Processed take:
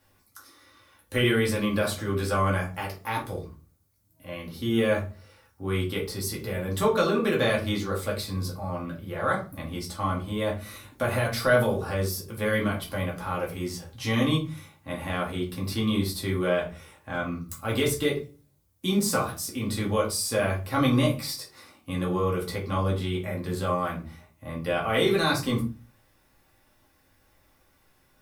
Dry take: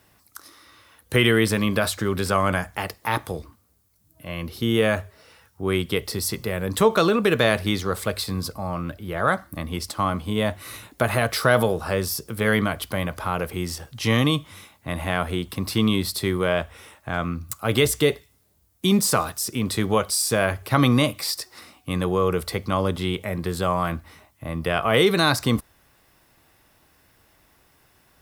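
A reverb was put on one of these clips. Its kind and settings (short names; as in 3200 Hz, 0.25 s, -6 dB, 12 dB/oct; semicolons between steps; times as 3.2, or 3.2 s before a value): shoebox room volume 150 m³, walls furnished, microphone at 2.3 m; gain -10 dB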